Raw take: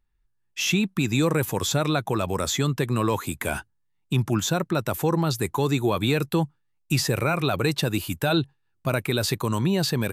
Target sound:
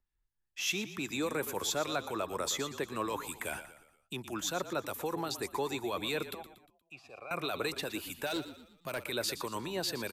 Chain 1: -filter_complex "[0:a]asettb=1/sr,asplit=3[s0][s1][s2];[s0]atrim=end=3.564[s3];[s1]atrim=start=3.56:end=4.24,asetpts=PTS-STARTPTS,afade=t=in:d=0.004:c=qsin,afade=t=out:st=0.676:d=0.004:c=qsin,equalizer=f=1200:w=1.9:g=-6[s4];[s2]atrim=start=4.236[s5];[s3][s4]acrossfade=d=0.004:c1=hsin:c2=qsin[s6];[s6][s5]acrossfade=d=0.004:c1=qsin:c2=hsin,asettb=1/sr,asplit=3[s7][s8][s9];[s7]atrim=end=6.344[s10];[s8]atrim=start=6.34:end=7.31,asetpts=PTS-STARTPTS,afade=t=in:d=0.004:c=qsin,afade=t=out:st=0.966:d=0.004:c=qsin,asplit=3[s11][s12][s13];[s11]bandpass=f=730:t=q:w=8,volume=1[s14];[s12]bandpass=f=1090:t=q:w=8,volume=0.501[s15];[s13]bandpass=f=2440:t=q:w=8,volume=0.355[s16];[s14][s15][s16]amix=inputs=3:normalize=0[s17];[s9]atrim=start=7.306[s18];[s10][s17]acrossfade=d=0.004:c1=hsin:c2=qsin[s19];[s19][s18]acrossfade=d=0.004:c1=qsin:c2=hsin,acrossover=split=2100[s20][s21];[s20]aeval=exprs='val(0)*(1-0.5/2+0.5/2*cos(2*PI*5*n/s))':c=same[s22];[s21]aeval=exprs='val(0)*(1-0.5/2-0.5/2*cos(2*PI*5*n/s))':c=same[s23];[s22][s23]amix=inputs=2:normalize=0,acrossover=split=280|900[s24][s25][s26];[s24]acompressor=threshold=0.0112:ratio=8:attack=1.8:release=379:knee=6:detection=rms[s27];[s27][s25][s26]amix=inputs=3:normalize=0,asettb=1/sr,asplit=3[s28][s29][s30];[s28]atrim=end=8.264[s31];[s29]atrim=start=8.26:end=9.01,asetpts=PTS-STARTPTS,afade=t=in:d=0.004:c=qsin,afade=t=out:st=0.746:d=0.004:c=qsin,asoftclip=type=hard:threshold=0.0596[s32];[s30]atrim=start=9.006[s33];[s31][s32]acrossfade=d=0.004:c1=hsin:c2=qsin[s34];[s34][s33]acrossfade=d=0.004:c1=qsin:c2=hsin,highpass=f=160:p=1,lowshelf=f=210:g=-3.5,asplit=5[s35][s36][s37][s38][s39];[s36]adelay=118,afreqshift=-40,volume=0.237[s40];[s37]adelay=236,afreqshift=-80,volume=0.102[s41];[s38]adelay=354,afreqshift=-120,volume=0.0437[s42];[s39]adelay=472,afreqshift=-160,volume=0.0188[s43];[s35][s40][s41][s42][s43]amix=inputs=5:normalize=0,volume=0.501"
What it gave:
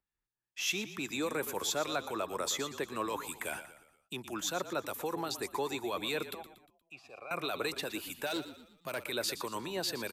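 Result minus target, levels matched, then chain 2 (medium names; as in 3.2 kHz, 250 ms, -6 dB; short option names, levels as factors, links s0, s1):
125 Hz band -3.0 dB
-filter_complex "[0:a]asettb=1/sr,asplit=3[s0][s1][s2];[s0]atrim=end=3.564[s3];[s1]atrim=start=3.56:end=4.24,asetpts=PTS-STARTPTS,afade=t=in:d=0.004:c=qsin,afade=t=out:st=0.676:d=0.004:c=qsin,equalizer=f=1200:w=1.9:g=-6[s4];[s2]atrim=start=4.236[s5];[s3][s4]acrossfade=d=0.004:c1=hsin:c2=qsin[s6];[s6][s5]acrossfade=d=0.004:c1=qsin:c2=hsin,asettb=1/sr,asplit=3[s7][s8][s9];[s7]atrim=end=6.344[s10];[s8]atrim=start=6.34:end=7.31,asetpts=PTS-STARTPTS,afade=t=in:d=0.004:c=qsin,afade=t=out:st=0.966:d=0.004:c=qsin,asplit=3[s11][s12][s13];[s11]bandpass=f=730:t=q:w=8,volume=1[s14];[s12]bandpass=f=1090:t=q:w=8,volume=0.501[s15];[s13]bandpass=f=2440:t=q:w=8,volume=0.355[s16];[s14][s15][s16]amix=inputs=3:normalize=0[s17];[s9]atrim=start=7.306[s18];[s10][s17]acrossfade=d=0.004:c1=hsin:c2=qsin[s19];[s19][s18]acrossfade=d=0.004:c1=qsin:c2=hsin,acrossover=split=2100[s20][s21];[s20]aeval=exprs='val(0)*(1-0.5/2+0.5/2*cos(2*PI*5*n/s))':c=same[s22];[s21]aeval=exprs='val(0)*(1-0.5/2-0.5/2*cos(2*PI*5*n/s))':c=same[s23];[s22][s23]amix=inputs=2:normalize=0,acrossover=split=280|900[s24][s25][s26];[s24]acompressor=threshold=0.0112:ratio=8:attack=1.8:release=379:knee=6:detection=rms[s27];[s27][s25][s26]amix=inputs=3:normalize=0,asettb=1/sr,asplit=3[s28][s29][s30];[s28]atrim=end=8.264[s31];[s29]atrim=start=8.26:end=9.01,asetpts=PTS-STARTPTS,afade=t=in:d=0.004:c=qsin,afade=t=out:st=0.746:d=0.004:c=qsin,asoftclip=type=hard:threshold=0.0596[s32];[s30]atrim=start=9.006[s33];[s31][s32]acrossfade=d=0.004:c1=hsin:c2=qsin[s34];[s34][s33]acrossfade=d=0.004:c1=qsin:c2=hsin,lowshelf=f=210:g=-3.5,asplit=5[s35][s36][s37][s38][s39];[s36]adelay=118,afreqshift=-40,volume=0.237[s40];[s37]adelay=236,afreqshift=-80,volume=0.102[s41];[s38]adelay=354,afreqshift=-120,volume=0.0437[s42];[s39]adelay=472,afreqshift=-160,volume=0.0188[s43];[s35][s40][s41][s42][s43]amix=inputs=5:normalize=0,volume=0.501"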